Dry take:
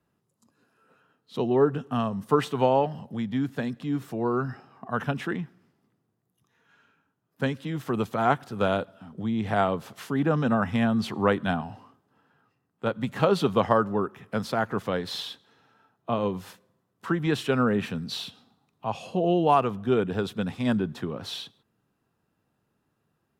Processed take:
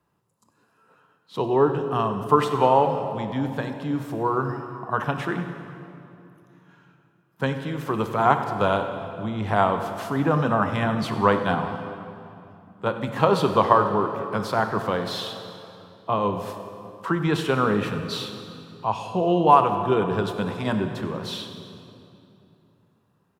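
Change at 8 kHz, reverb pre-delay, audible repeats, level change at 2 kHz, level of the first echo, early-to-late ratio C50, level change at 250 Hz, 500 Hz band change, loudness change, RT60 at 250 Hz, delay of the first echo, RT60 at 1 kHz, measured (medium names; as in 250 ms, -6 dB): +2.0 dB, 21 ms, 1, +3.5 dB, -16.5 dB, 7.0 dB, +0.5 dB, +3.0 dB, +3.0 dB, 3.5 s, 95 ms, 2.7 s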